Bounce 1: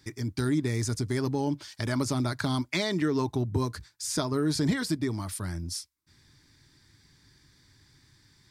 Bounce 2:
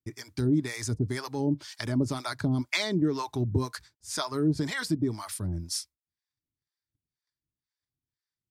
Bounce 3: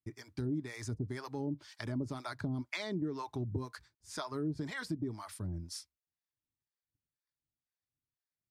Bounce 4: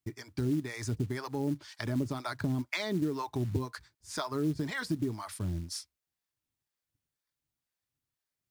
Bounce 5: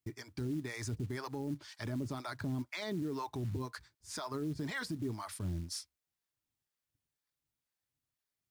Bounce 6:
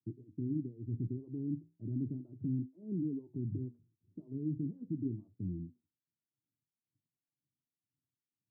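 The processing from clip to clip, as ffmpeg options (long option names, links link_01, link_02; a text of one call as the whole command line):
ffmpeg -i in.wav -filter_complex "[0:a]agate=range=-33dB:threshold=-54dB:ratio=16:detection=peak,acrossover=split=620[link_01][link_02];[link_01]aeval=exprs='val(0)*(1-1/2+1/2*cos(2*PI*2*n/s))':channel_layout=same[link_03];[link_02]aeval=exprs='val(0)*(1-1/2-1/2*cos(2*PI*2*n/s))':channel_layout=same[link_04];[link_03][link_04]amix=inputs=2:normalize=0,volume=3.5dB" out.wav
ffmpeg -i in.wav -af "highshelf=frequency=3300:gain=-9,acompressor=threshold=-31dB:ratio=2,volume=-5dB" out.wav
ffmpeg -i in.wav -af "acrusher=bits=6:mode=log:mix=0:aa=0.000001,volume=5dB" out.wav
ffmpeg -i in.wav -af "alimiter=level_in=4dB:limit=-24dB:level=0:latency=1:release=11,volume=-4dB,volume=-2dB" out.wav
ffmpeg -i in.wav -af "flanger=delay=9.1:depth=7.9:regen=-72:speed=0.36:shape=triangular,asuperpass=centerf=190:order=8:qfactor=0.78,volume=6.5dB" out.wav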